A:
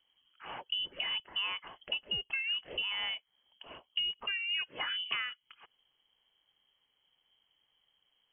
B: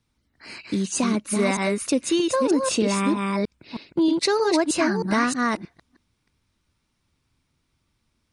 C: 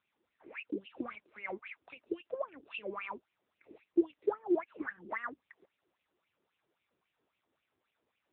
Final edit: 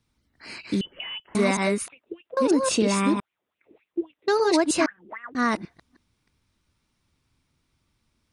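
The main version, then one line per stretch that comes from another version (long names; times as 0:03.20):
B
0:00.81–0:01.35: punch in from A
0:01.88–0:02.37: punch in from C
0:03.20–0:04.28: punch in from C
0:04.86–0:05.35: punch in from C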